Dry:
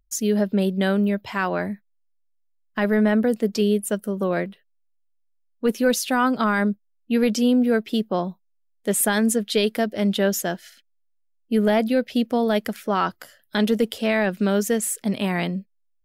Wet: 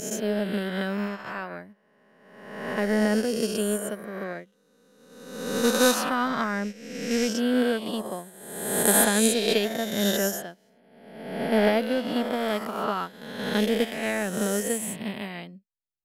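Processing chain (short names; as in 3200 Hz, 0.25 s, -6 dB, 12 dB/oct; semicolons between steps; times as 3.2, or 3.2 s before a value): spectral swells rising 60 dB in 2.77 s; upward expander 2.5:1, over -30 dBFS; gain -3 dB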